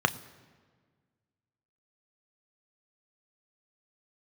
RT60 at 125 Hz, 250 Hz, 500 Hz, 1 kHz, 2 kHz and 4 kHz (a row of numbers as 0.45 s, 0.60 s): 1.9 s, 2.0 s, 1.7 s, 1.5 s, 1.4 s, 1.1 s